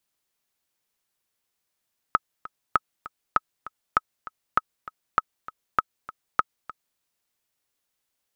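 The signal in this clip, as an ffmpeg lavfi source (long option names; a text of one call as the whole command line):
ffmpeg -f lavfi -i "aevalsrc='pow(10,(-5-18*gte(mod(t,2*60/198),60/198))/20)*sin(2*PI*1280*mod(t,60/198))*exp(-6.91*mod(t,60/198)/0.03)':duration=4.84:sample_rate=44100" out.wav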